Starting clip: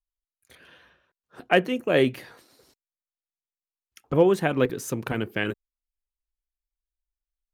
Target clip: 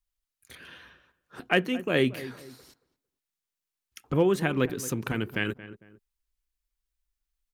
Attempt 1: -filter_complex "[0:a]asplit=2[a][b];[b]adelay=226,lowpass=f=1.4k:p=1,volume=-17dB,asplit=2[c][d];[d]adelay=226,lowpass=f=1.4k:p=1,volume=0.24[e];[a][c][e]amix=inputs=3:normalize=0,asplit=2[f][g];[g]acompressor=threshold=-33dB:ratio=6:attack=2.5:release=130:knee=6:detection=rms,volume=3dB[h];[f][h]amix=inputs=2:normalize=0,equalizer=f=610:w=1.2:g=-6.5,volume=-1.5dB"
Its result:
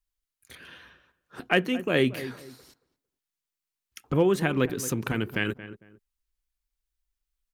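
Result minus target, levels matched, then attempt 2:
compressor: peak gain reduction -7.5 dB
-filter_complex "[0:a]asplit=2[a][b];[b]adelay=226,lowpass=f=1.4k:p=1,volume=-17dB,asplit=2[c][d];[d]adelay=226,lowpass=f=1.4k:p=1,volume=0.24[e];[a][c][e]amix=inputs=3:normalize=0,asplit=2[f][g];[g]acompressor=threshold=-42dB:ratio=6:attack=2.5:release=130:knee=6:detection=rms,volume=3dB[h];[f][h]amix=inputs=2:normalize=0,equalizer=f=610:w=1.2:g=-6.5,volume=-1.5dB"

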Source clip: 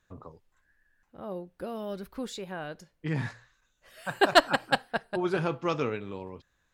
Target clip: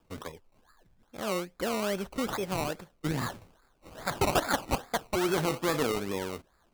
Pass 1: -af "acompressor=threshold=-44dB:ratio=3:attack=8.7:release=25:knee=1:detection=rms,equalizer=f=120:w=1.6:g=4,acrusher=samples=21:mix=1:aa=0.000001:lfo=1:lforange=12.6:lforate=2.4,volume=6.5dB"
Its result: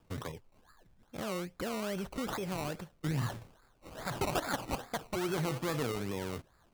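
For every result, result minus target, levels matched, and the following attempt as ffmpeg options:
compressor: peak gain reduction +7 dB; 125 Hz band +5.0 dB
-af "acompressor=threshold=-33.5dB:ratio=3:attack=8.7:release=25:knee=1:detection=rms,equalizer=f=120:w=1.6:g=4,acrusher=samples=21:mix=1:aa=0.000001:lfo=1:lforange=12.6:lforate=2.4,volume=6.5dB"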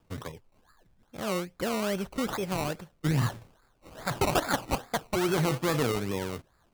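125 Hz band +5.0 dB
-af "acompressor=threshold=-33.5dB:ratio=3:attack=8.7:release=25:knee=1:detection=rms,equalizer=f=120:w=1.6:g=-7.5,acrusher=samples=21:mix=1:aa=0.000001:lfo=1:lforange=12.6:lforate=2.4,volume=6.5dB"

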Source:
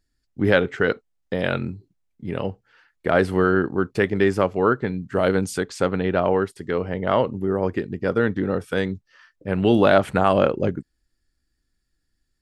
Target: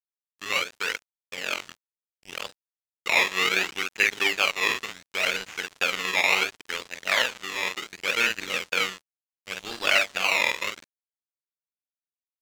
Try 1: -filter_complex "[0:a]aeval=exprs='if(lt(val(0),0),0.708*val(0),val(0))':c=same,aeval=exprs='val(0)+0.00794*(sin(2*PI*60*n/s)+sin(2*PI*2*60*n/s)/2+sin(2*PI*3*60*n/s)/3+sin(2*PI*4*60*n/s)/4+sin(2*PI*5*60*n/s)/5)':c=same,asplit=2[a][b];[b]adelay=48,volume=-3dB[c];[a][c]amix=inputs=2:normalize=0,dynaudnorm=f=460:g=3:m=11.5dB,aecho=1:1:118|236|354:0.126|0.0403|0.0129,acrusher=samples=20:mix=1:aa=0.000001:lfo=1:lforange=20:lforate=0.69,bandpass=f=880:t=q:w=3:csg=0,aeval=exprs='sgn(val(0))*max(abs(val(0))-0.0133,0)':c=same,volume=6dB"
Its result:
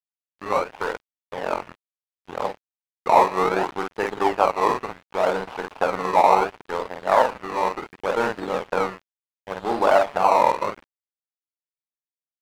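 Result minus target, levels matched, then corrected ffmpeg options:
1000 Hz band +11.0 dB
-filter_complex "[0:a]aeval=exprs='if(lt(val(0),0),0.708*val(0),val(0))':c=same,aeval=exprs='val(0)+0.00794*(sin(2*PI*60*n/s)+sin(2*PI*2*60*n/s)/2+sin(2*PI*3*60*n/s)/3+sin(2*PI*4*60*n/s)/4+sin(2*PI*5*60*n/s)/5)':c=same,asplit=2[a][b];[b]adelay=48,volume=-3dB[c];[a][c]amix=inputs=2:normalize=0,dynaudnorm=f=460:g=3:m=11.5dB,aecho=1:1:118|236|354:0.126|0.0403|0.0129,acrusher=samples=20:mix=1:aa=0.000001:lfo=1:lforange=20:lforate=0.69,bandpass=f=2.5k:t=q:w=3:csg=0,aeval=exprs='sgn(val(0))*max(abs(val(0))-0.0133,0)':c=same,volume=6dB"

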